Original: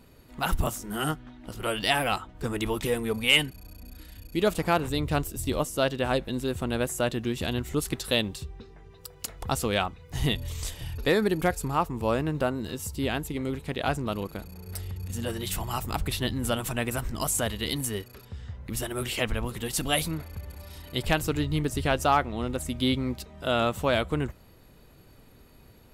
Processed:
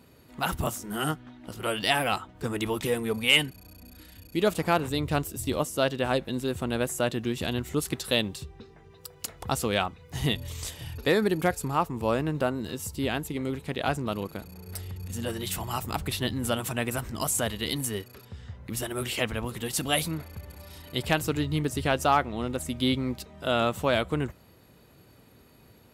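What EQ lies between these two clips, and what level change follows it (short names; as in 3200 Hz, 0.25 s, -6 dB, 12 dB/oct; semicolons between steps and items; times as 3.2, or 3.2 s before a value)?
HPF 80 Hz 12 dB/oct; 0.0 dB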